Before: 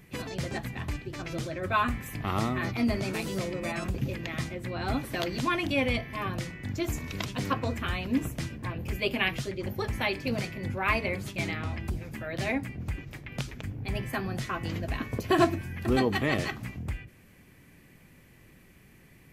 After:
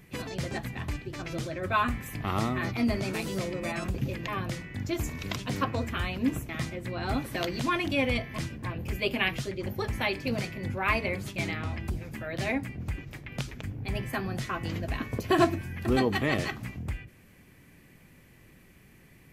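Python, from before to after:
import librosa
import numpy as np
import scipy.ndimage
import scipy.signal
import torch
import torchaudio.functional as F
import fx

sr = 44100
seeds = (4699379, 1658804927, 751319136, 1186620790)

y = fx.edit(x, sr, fx.move(start_s=4.28, length_s=1.89, to_s=8.38), tone=tone)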